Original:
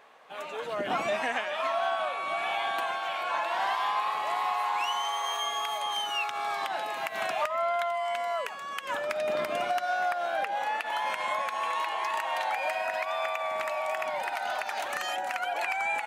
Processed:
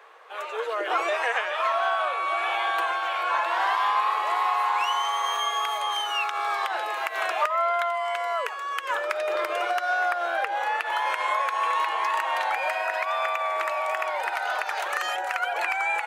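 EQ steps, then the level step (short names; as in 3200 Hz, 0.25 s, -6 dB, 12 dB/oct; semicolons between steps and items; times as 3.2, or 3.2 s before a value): rippled Chebyshev high-pass 330 Hz, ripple 6 dB; +7.5 dB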